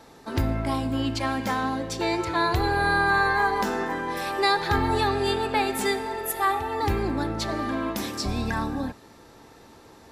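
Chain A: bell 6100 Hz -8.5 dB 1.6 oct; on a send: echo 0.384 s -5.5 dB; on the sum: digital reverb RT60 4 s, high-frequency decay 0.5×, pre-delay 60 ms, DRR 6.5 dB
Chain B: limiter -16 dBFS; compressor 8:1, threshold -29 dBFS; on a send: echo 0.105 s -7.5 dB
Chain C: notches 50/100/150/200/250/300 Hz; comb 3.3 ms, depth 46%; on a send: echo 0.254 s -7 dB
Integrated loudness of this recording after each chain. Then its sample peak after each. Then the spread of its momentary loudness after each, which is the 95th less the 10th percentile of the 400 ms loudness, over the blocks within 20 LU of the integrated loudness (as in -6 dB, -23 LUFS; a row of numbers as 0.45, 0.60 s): -24.0, -32.0, -24.0 LUFS; -8.5, -18.5, -9.5 dBFS; 10, 6, 7 LU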